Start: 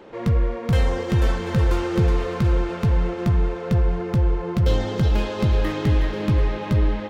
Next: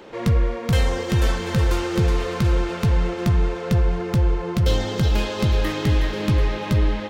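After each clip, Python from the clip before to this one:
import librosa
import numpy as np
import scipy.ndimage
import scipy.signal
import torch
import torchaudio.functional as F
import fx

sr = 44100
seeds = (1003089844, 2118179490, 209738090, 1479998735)

y = fx.high_shelf(x, sr, hz=2600.0, db=8.5)
y = fx.rider(y, sr, range_db=10, speed_s=0.5)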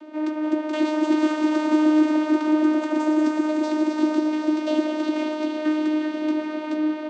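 y = fx.echo_pitch(x, sr, ms=331, semitones=6, count=3, db_per_echo=-3.0)
y = fx.vocoder(y, sr, bands=16, carrier='saw', carrier_hz=307.0)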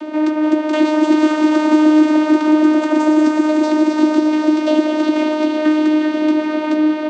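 y = fx.band_squash(x, sr, depth_pct=40)
y = y * librosa.db_to_amplitude(7.5)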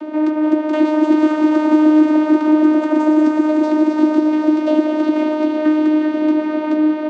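y = fx.high_shelf(x, sr, hz=2300.0, db=-11.0)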